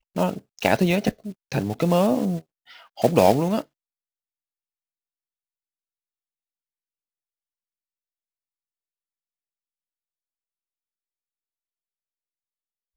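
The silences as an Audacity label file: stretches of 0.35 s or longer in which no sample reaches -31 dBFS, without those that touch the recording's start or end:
2.390000	2.990000	silence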